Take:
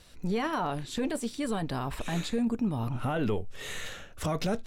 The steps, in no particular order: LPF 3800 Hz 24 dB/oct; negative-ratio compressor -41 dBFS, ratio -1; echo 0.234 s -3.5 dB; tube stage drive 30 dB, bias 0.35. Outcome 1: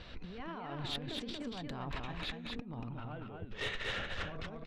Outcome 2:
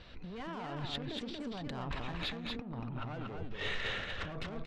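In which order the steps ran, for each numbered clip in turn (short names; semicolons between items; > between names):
LPF > negative-ratio compressor > tube stage > echo; LPF > tube stage > negative-ratio compressor > echo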